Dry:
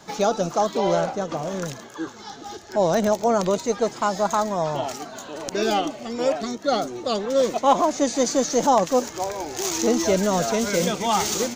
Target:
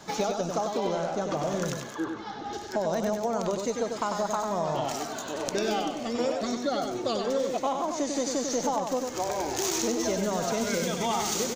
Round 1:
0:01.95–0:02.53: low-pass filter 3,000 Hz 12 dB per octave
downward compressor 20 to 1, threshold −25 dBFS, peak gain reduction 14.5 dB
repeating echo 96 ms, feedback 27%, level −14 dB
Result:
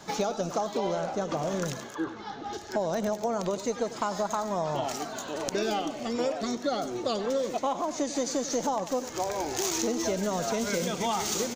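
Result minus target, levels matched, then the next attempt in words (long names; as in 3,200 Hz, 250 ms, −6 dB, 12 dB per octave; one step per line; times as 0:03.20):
echo-to-direct −9 dB
0:01.95–0:02.53: low-pass filter 3,000 Hz 12 dB per octave
downward compressor 20 to 1, threshold −25 dBFS, peak gain reduction 14.5 dB
repeating echo 96 ms, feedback 27%, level −5 dB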